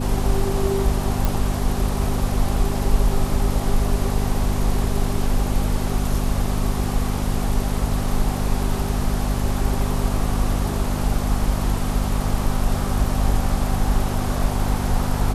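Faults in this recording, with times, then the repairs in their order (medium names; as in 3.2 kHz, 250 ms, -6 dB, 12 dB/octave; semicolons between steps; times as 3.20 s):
hum 50 Hz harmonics 5 -25 dBFS
1.25 s: pop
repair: de-click; de-hum 50 Hz, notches 5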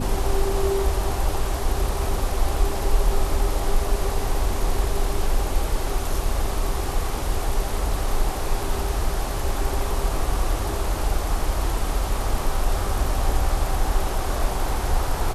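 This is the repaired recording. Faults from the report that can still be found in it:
nothing left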